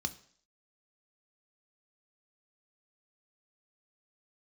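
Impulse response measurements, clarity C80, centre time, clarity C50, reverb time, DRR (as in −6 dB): 20.5 dB, 5 ms, 17.0 dB, 0.55 s, 8.5 dB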